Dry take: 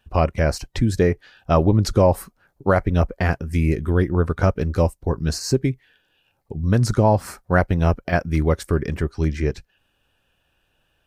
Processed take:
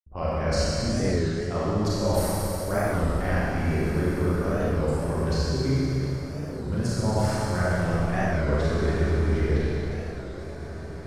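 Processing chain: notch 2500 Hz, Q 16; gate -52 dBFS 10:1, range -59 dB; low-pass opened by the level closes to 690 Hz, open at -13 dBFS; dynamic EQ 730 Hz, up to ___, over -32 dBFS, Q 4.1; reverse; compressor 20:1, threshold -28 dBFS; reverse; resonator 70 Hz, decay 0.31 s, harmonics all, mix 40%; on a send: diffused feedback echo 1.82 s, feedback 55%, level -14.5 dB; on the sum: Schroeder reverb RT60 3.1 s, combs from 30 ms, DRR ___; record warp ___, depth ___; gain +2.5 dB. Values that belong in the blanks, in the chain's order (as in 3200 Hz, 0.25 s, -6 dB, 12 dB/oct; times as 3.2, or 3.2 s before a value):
-3 dB, -9.5 dB, 33 1/3 rpm, 160 cents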